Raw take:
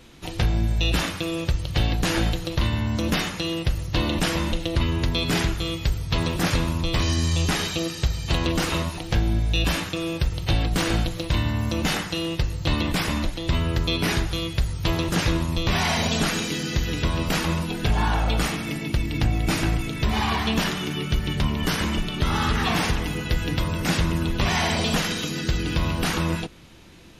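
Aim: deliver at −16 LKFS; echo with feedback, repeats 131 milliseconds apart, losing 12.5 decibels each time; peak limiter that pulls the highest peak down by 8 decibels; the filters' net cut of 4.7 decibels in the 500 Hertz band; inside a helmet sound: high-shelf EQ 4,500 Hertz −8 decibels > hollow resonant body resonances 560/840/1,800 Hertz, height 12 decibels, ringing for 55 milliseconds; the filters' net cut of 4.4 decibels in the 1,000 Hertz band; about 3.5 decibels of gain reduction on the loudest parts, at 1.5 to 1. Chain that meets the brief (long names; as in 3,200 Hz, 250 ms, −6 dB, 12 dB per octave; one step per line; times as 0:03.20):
parametric band 500 Hz −5.5 dB
parametric band 1,000 Hz −3.5 dB
downward compressor 1.5 to 1, threshold −27 dBFS
brickwall limiter −21.5 dBFS
high-shelf EQ 4,500 Hz −8 dB
repeating echo 131 ms, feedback 24%, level −12.5 dB
hollow resonant body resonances 560/840/1,800 Hz, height 12 dB, ringing for 55 ms
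level +15 dB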